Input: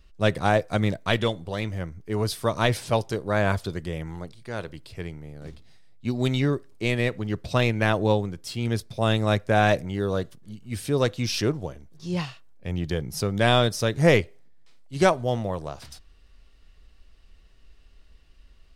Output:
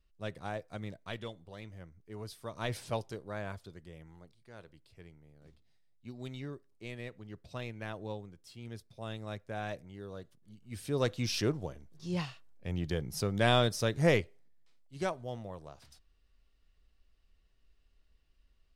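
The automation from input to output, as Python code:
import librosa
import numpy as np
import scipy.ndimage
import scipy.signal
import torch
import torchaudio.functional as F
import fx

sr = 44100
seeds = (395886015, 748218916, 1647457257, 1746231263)

y = fx.gain(x, sr, db=fx.line((2.51, -18.0), (2.8, -10.0), (3.58, -19.0), (10.19, -19.0), (11.12, -6.5), (13.88, -6.5), (14.97, -15.0)))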